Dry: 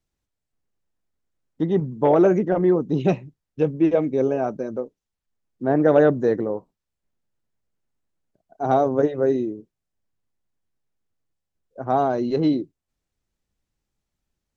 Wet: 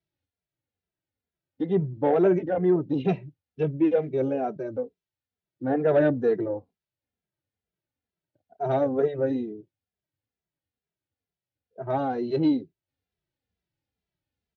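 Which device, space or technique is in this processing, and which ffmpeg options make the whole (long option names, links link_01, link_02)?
barber-pole flanger into a guitar amplifier: -filter_complex "[0:a]asplit=2[link_01][link_02];[link_02]adelay=2.6,afreqshift=-2.2[link_03];[link_01][link_03]amix=inputs=2:normalize=1,asoftclip=type=tanh:threshold=-11.5dB,highpass=79,equalizer=frequency=94:width_type=q:width=4:gain=5,equalizer=frequency=220:width_type=q:width=4:gain=-4,equalizer=frequency=1100:width_type=q:width=4:gain=-8,lowpass=frequency=4500:width=0.5412,lowpass=frequency=4500:width=1.3066"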